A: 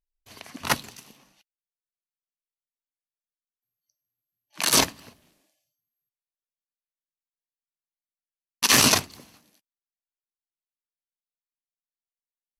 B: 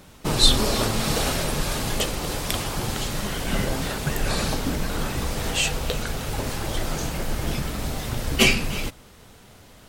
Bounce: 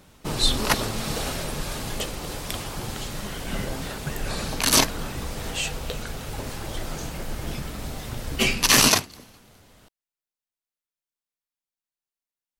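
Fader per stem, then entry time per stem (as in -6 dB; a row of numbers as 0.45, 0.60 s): +1.0, -5.0 dB; 0.00, 0.00 s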